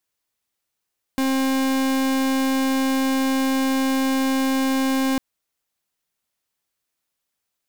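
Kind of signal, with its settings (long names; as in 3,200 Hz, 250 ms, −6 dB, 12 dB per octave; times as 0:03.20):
pulse wave 266 Hz, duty 41% −20.5 dBFS 4.00 s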